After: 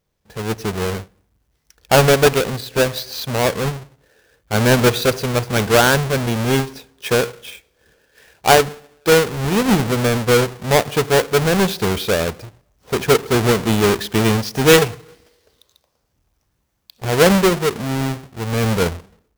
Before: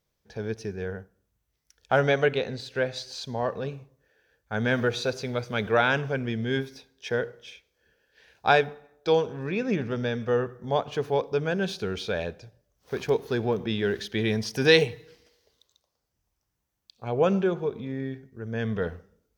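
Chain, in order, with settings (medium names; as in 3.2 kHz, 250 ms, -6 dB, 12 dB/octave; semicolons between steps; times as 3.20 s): square wave that keeps the level; level rider gain up to 7 dB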